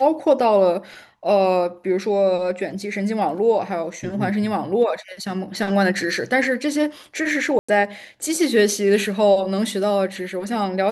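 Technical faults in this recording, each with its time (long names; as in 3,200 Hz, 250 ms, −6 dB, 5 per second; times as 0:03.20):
0:07.59–0:07.68: drop-out 95 ms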